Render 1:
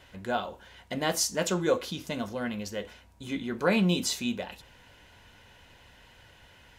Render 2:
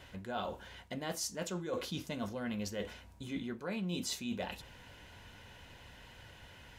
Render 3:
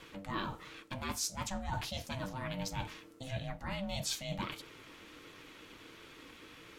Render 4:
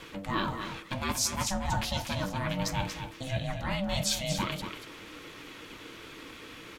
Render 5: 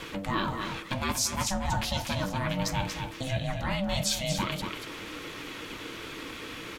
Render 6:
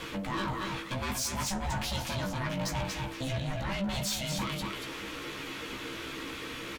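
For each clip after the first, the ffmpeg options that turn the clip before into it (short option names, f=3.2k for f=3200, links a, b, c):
-af "equalizer=f=120:w=0.5:g=3,areverse,acompressor=threshold=-35dB:ratio=10,areverse"
-af "aeval=exprs='val(0)*sin(2*PI*390*n/s)':c=same,equalizer=f=590:t=o:w=1.1:g=-7,flanger=delay=1.8:depth=2.1:regen=-68:speed=1.5:shape=triangular,volume=9.5dB"
-af "aecho=1:1:235:0.398,volume=7dB"
-af "acompressor=threshold=-41dB:ratio=1.5,volume=6.5dB"
-filter_complex "[0:a]asoftclip=type=tanh:threshold=-29.5dB,asplit=2[a][b];[b]adelay=15,volume=-5dB[c];[a][c]amix=inputs=2:normalize=0"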